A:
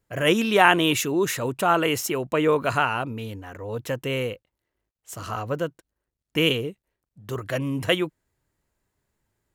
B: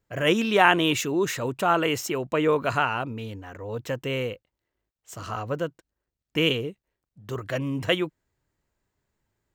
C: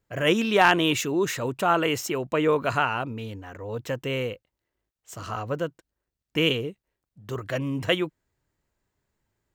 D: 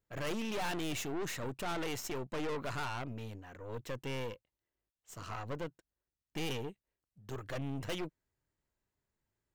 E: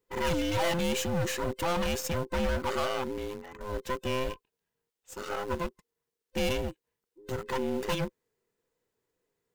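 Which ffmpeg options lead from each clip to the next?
-af "equalizer=f=11000:w=2.6:g=-14.5,volume=0.841"
-af "asoftclip=type=hard:threshold=0.447"
-af "aeval=exprs='(tanh(31.6*val(0)+0.75)-tanh(0.75))/31.6':c=same,volume=0.562"
-filter_complex "[0:a]afftfilt=real='real(if(between(b,1,1008),(2*floor((b-1)/24)+1)*24-b,b),0)':imag='imag(if(between(b,1,1008),(2*floor((b-1)/24)+1)*24-b,b),0)*if(between(b,1,1008),-1,1)':win_size=2048:overlap=0.75,asplit=2[s0][s1];[s1]acrusher=bits=6:mix=0:aa=0.000001,volume=0.299[s2];[s0][s2]amix=inputs=2:normalize=0,volume=1.68"

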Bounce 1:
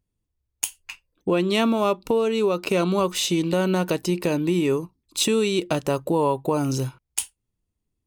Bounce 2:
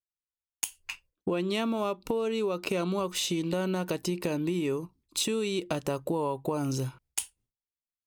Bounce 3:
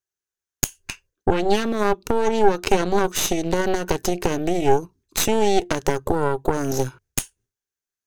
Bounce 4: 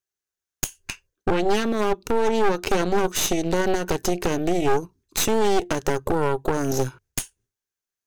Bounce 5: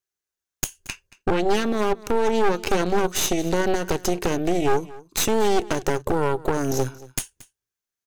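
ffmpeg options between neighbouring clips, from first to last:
-af "agate=range=0.0224:threshold=0.00251:ratio=3:detection=peak,acompressor=threshold=0.0355:ratio=3"
-af "equalizer=f=100:t=o:w=0.33:g=7,equalizer=f=400:t=o:w=0.33:g=11,equalizer=f=1600:t=o:w=0.33:g=10,equalizer=f=6300:t=o:w=0.33:g=10,aeval=exprs='0.473*(cos(1*acos(clip(val(0)/0.473,-1,1)))-cos(1*PI/2))+0.15*(cos(6*acos(clip(val(0)/0.473,-1,1)))-cos(6*PI/2))':c=same,volume=1.26"
-af "asoftclip=type=hard:threshold=0.266"
-af "aecho=1:1:228:0.1"

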